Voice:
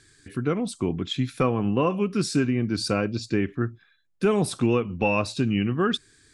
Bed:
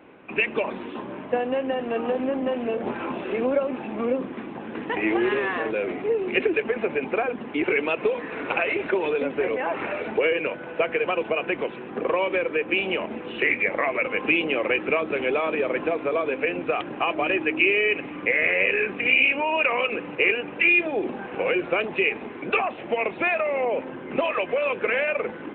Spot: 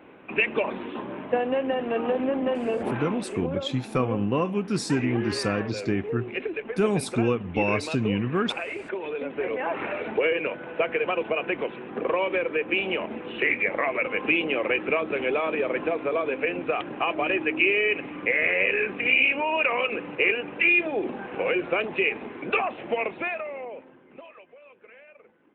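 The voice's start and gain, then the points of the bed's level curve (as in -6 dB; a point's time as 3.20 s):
2.55 s, -2.0 dB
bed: 2.98 s 0 dB
3.36 s -8.5 dB
9.01 s -8.5 dB
9.68 s -1.5 dB
22.97 s -1.5 dB
24.57 s -27 dB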